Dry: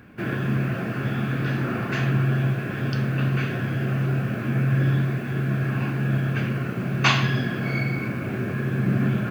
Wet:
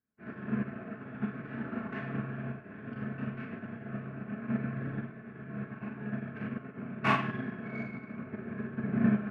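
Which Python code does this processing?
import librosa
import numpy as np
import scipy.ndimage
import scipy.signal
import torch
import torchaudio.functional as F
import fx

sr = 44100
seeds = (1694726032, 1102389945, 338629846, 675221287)

p1 = scipy.signal.sosfilt(scipy.signal.butter(4, 2200.0, 'lowpass', fs=sr, output='sos'), x)
p2 = fx.hum_notches(p1, sr, base_hz=60, count=4)
p3 = p2 + 0.43 * np.pad(p2, (int(4.6 * sr / 1000.0), 0))[:len(p2)]
p4 = 10.0 ** (-22.5 / 20.0) * np.tanh(p3 / 10.0 ** (-22.5 / 20.0))
p5 = p3 + (p4 * 10.0 ** (-4.0 / 20.0))
p6 = fx.rev_schroeder(p5, sr, rt60_s=0.43, comb_ms=27, drr_db=0.5)
p7 = fx.upward_expand(p6, sr, threshold_db=-39.0, expansion=2.5)
y = p7 * 10.0 ** (-9.0 / 20.0)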